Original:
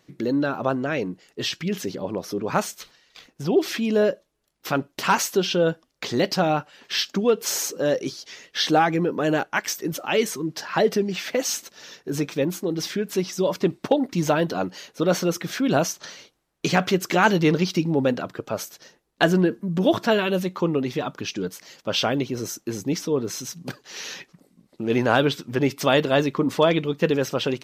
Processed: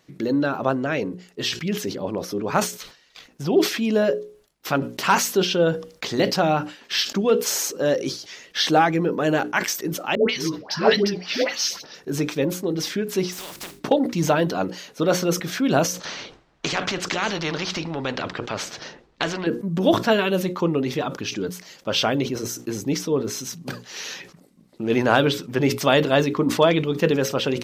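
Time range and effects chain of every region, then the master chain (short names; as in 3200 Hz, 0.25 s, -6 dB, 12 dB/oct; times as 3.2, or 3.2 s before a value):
10.15–11.95 resonant high shelf 6400 Hz -8 dB, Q 3 + dispersion highs, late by 0.144 s, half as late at 730 Hz
13.31–13.79 spectral contrast lowered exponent 0.27 + notches 50/100/150/200/250/300/350/400 Hz + compressor 12:1, threshold -33 dBFS
16.05–19.47 compressor 1.5:1, threshold -23 dBFS + air absorption 150 m + spectral compressor 2:1
whole clip: notches 60/120/180/240/300/360/420/480/540 Hz; sustainer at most 130 dB/s; gain +1.5 dB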